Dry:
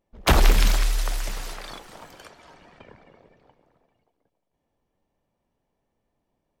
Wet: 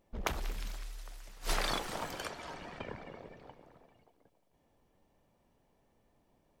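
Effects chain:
gate with flip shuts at −22 dBFS, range −27 dB
level +5 dB

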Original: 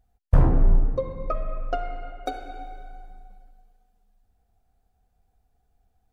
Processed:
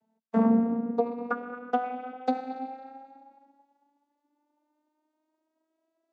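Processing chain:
vocoder with a gliding carrier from A3, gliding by +7 semitones
level +2.5 dB

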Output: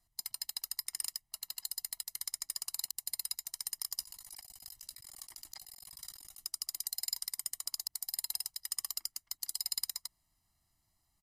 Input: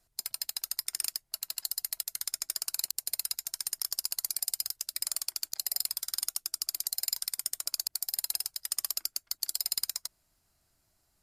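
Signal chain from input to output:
comb filter 1 ms, depth 89%
0:04.00–0:06.45: compressor whose output falls as the input rises −38 dBFS, ratio −0.5
level −8 dB

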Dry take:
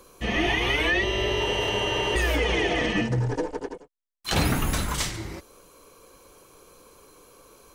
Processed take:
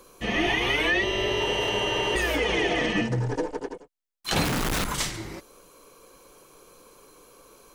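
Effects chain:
parametric band 71 Hz −13 dB 0.63 octaves
0:04.44–0:04.85: comparator with hysteresis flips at −36.5 dBFS

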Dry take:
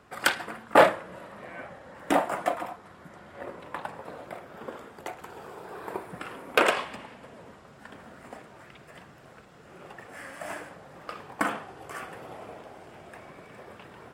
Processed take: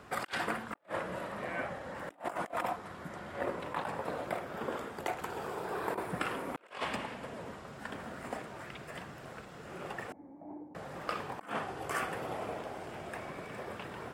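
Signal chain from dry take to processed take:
0:10.12–0:10.75: formant resonators in series u
compressor whose output falls as the input rises −36 dBFS, ratio −0.5
level −1.5 dB

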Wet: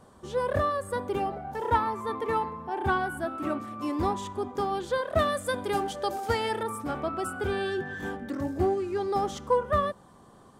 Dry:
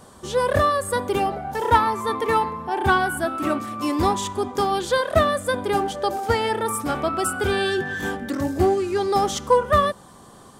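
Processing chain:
high-shelf EQ 2,500 Hz −9 dB, from 0:05.19 +2 dB, from 0:06.63 −9 dB
level −6.5 dB

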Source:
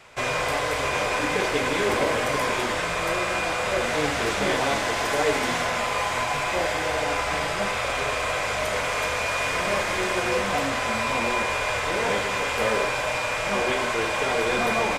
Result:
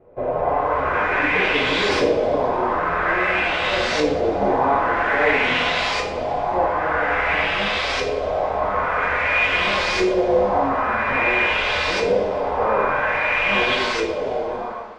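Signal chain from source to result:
fade-out on the ending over 1.18 s
auto-filter low-pass saw up 0.5 Hz 430–5,300 Hz
coupled-rooms reverb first 0.53 s, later 3 s, from −18 dB, DRR 0 dB

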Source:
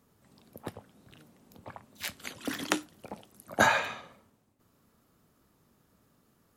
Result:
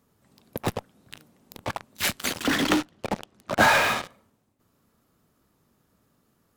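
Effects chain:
0:02.43–0:04.04: low-pass filter 4,100 Hz 12 dB per octave
in parallel at −9 dB: fuzz pedal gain 46 dB, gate −46 dBFS

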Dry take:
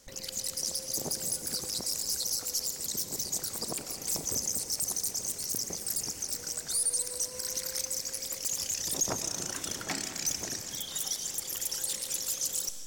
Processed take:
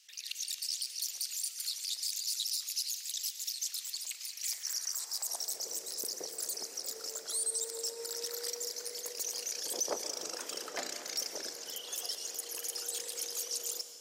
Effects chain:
high-pass filter sweep 2,900 Hz → 500 Hz, 0:04.01–0:05.22
wrong playback speed 48 kHz file played as 44.1 kHz
level −5 dB

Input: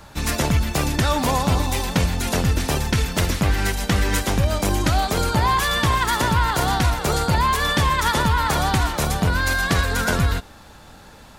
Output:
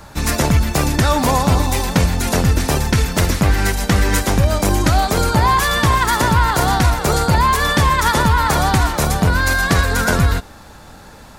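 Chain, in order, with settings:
parametric band 3,100 Hz −4 dB 0.75 octaves
level +5 dB

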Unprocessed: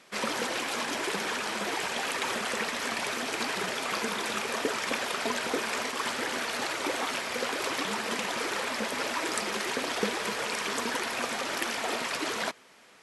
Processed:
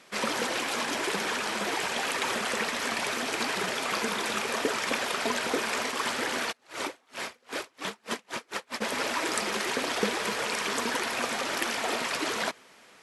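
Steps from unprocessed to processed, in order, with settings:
0:06.51–0:08.80: tremolo with a sine in dB 1.9 Hz → 5.7 Hz, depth 39 dB
level +1.5 dB

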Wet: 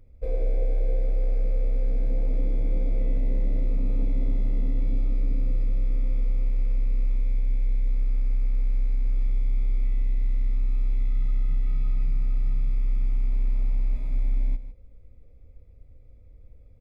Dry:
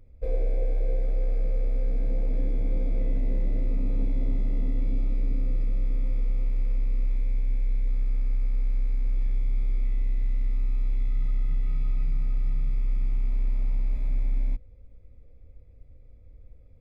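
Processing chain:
notch filter 1,700 Hz, Q 15
single-tap delay 156 ms −12.5 dB

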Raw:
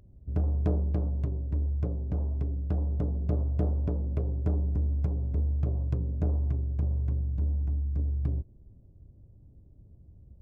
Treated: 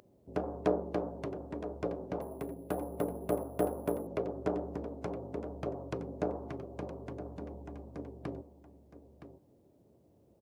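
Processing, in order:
high-pass filter 440 Hz 12 dB per octave
on a send: single-tap delay 967 ms −12 dB
0:02.21–0:04.07: on the sum: bad sample-rate conversion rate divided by 4×, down filtered, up hold
level +9 dB

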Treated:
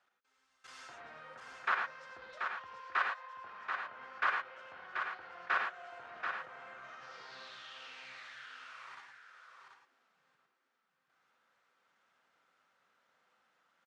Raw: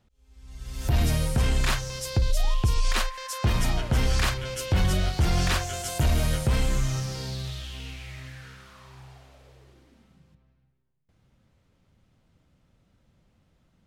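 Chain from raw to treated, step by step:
high-pass filter 630 Hz 12 dB per octave
treble cut that deepens with the level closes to 1,900 Hz, closed at −33 dBFS
low-pass filter 7,900 Hz 12 dB per octave
parametric band 1,400 Hz +12.5 dB 0.93 octaves
output level in coarse steps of 24 dB
flanger 1.9 Hz, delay 1 ms, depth 8.4 ms, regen −44%
on a send: single-tap delay 733 ms −6 dB
on the sum: reverb whose tail is shaped and stops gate 130 ms rising, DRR 2.5 dB
level −1.5 dB

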